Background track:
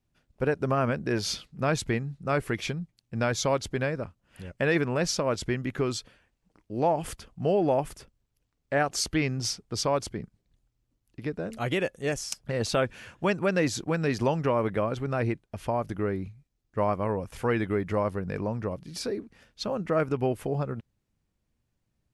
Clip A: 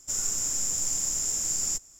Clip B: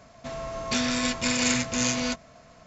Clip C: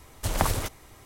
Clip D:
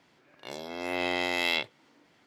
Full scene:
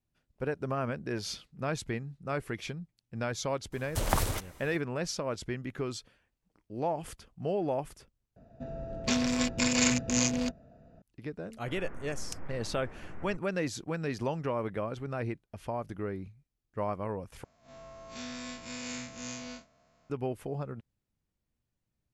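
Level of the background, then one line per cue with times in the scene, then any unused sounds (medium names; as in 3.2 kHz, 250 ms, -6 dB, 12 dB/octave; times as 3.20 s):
background track -7 dB
3.72 s: add C -3 dB
8.36 s: replace with B + local Wiener filter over 41 samples
11.59 s: add A -1 dB + steep low-pass 2 kHz
17.44 s: replace with B -14 dB + spectral blur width 87 ms
not used: D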